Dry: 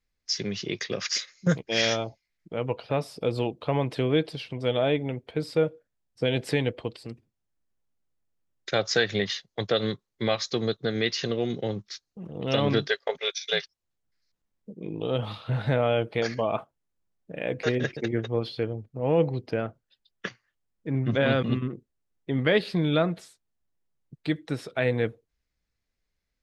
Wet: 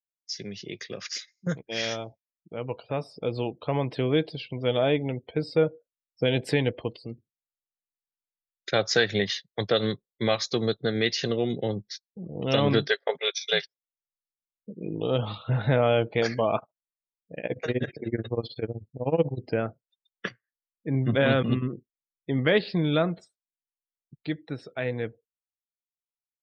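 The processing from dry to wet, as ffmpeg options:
ffmpeg -i in.wav -filter_complex "[0:a]asettb=1/sr,asplit=3[link_01][link_02][link_03];[link_01]atrim=end=16.584[link_04];[link_02]atrim=start=16.58:end=19.38,asetpts=PTS-STARTPTS,afade=type=in:duration=0.004:curve=qsin,afade=type=out:start_time=2.796:duration=0.004:curve=qsin,tremolo=f=16:d=0.92[link_05];[link_03]atrim=start=19.376[link_06];[link_04][link_05]acrossfade=duration=0.004:curve1=hsin:curve2=qsin[link_07];[link_07][link_06]acrossfade=duration=0.004:curve1=qsin:curve2=hsin,afftdn=noise_reduction=31:noise_floor=-47,dynaudnorm=framelen=570:gausssize=13:maxgain=11.5dB,volume=-6.5dB" out.wav

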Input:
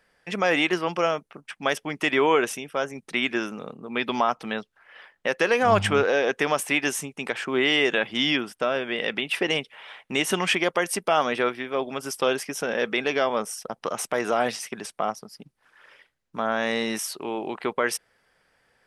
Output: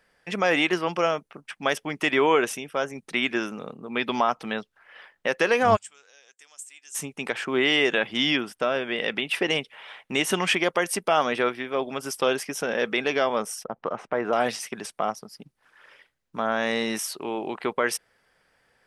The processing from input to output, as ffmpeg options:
ffmpeg -i in.wav -filter_complex "[0:a]asplit=3[link_01][link_02][link_03];[link_01]afade=type=out:start_time=5.75:duration=0.02[link_04];[link_02]bandpass=frequency=7600:width_type=q:width=6.6,afade=type=in:start_time=5.75:duration=0.02,afade=type=out:start_time=6.94:duration=0.02[link_05];[link_03]afade=type=in:start_time=6.94:duration=0.02[link_06];[link_04][link_05][link_06]amix=inputs=3:normalize=0,asettb=1/sr,asplit=3[link_07][link_08][link_09];[link_07]atrim=end=13.644[link_10];[link_08]atrim=start=13.64:end=14.33,asetpts=PTS-STARTPTS,afade=type=in:duration=0.004:curve=qsin,afade=type=out:start_time=0.686:duration=0.004:curve=qsin,lowpass=1700[link_11];[link_09]atrim=start=14.326[link_12];[link_10][link_11]acrossfade=duration=0.004:curve1=hsin:curve2=qsin[link_13];[link_13][link_12]acrossfade=duration=0.004:curve1=qsin:curve2=hsin" out.wav

